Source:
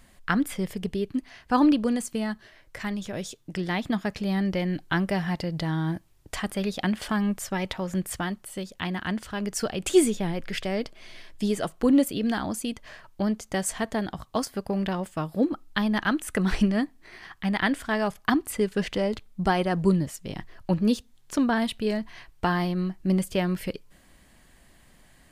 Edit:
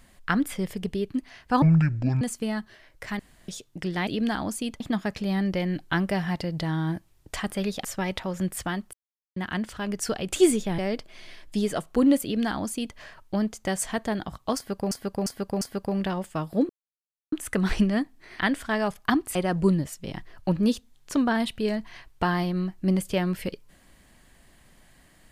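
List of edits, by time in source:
0:01.62–0:01.94: play speed 54%
0:02.92–0:03.21: fill with room tone
0:06.84–0:07.38: remove
0:08.47–0:08.90: silence
0:10.32–0:10.65: remove
0:12.10–0:12.83: duplicate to 0:03.80
0:14.43–0:14.78: repeat, 4 plays
0:15.51–0:16.14: silence
0:17.21–0:17.59: remove
0:18.55–0:19.57: remove

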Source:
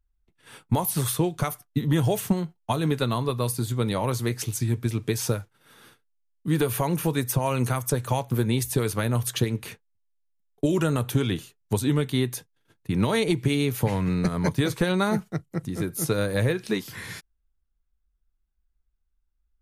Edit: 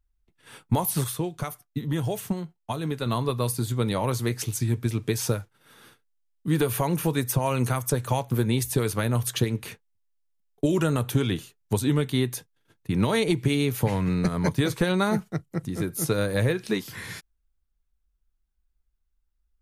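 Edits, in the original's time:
0:01.04–0:03.06: clip gain −5 dB

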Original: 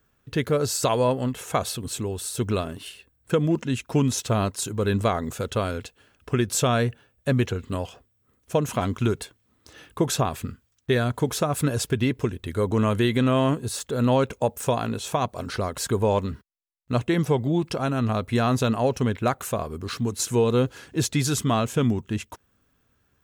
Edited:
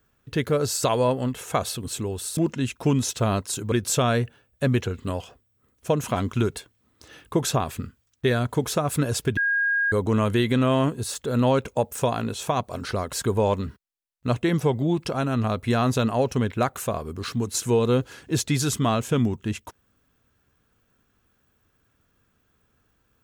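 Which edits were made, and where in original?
0:02.37–0:03.46: remove
0:04.81–0:06.37: remove
0:12.02–0:12.57: beep over 1,630 Hz −19.5 dBFS

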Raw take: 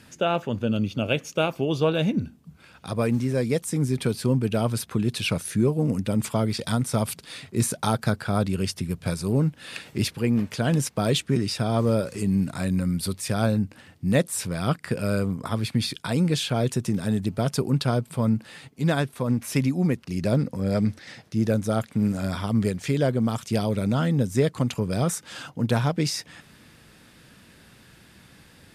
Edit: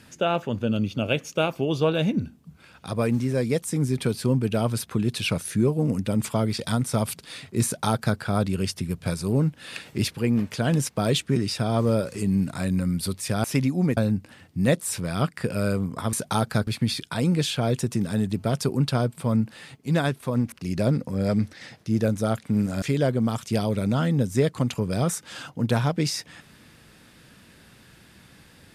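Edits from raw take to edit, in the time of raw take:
0:07.65–0:08.19: duplicate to 0:15.60
0:19.45–0:19.98: move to 0:13.44
0:22.28–0:22.82: remove

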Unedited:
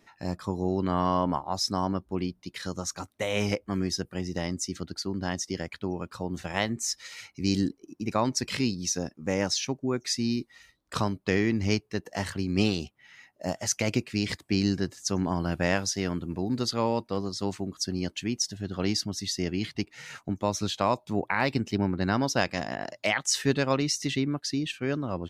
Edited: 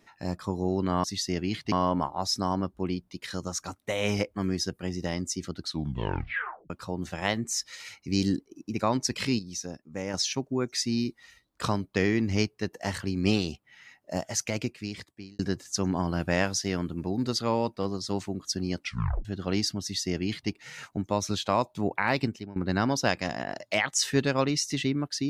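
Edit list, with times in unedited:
0:04.90: tape stop 1.12 s
0:08.71–0:09.46: clip gain −6.5 dB
0:13.48–0:14.71: fade out linear
0:18.10: tape stop 0.47 s
0:19.14–0:19.82: duplicate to 0:01.04
0:21.57–0:21.88: fade out quadratic, to −18.5 dB

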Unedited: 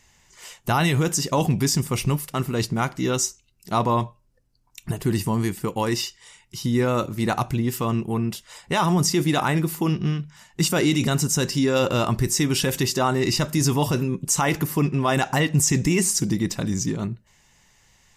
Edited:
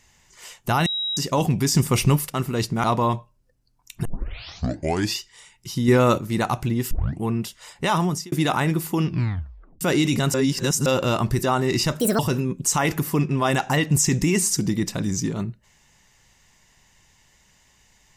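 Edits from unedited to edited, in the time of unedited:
0:00.86–0:01.17: beep over 3,840 Hz −23 dBFS
0:01.75–0:02.30: clip gain +4.5 dB
0:02.84–0:03.72: remove
0:04.93: tape start 1.12 s
0:06.76–0:07.07: clip gain +5 dB
0:07.79: tape start 0.31 s
0:08.85–0:09.20: fade out
0:09.95: tape stop 0.74 s
0:11.22–0:11.74: reverse
0:12.31–0:12.96: remove
0:13.53–0:13.82: play speed 154%

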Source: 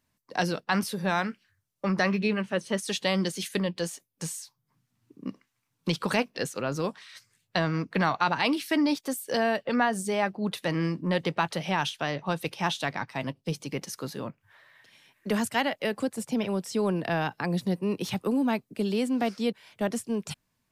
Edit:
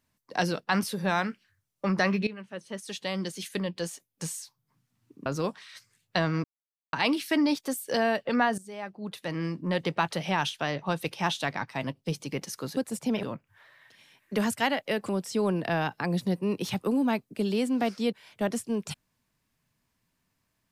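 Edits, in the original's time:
0:02.27–0:04.36: fade in, from −15 dB
0:05.26–0:06.66: remove
0:07.84–0:08.33: silence
0:09.98–0:11.41: fade in, from −17.5 dB
0:16.03–0:16.49: move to 0:14.17

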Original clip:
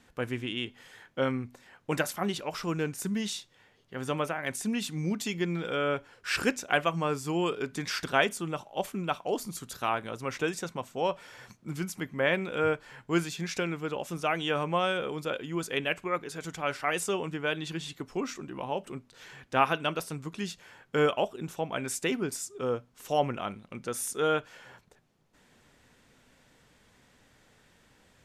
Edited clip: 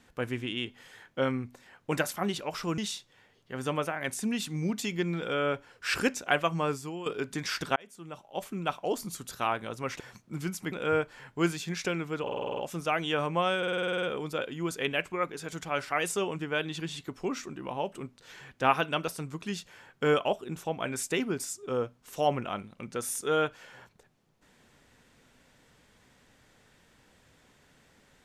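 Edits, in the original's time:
0:02.78–0:03.20: remove
0:07.15–0:07.48: fade out quadratic, to −12 dB
0:08.18–0:09.15: fade in
0:10.42–0:11.35: remove
0:12.07–0:12.44: remove
0:13.94: stutter 0.05 s, 8 plays
0:14.95: stutter 0.05 s, 10 plays

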